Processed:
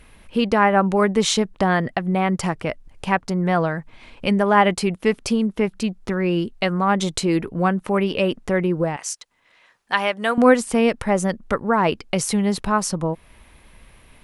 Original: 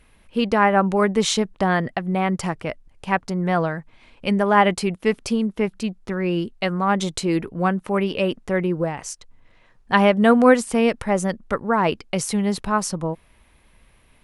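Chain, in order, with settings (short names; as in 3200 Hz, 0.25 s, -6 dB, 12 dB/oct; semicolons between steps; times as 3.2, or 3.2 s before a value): 8.96–10.38 HPF 1400 Hz 6 dB/oct; in parallel at +3 dB: compressor, threshold -32 dBFS, peak gain reduction 22 dB; on the sum: gain -1 dB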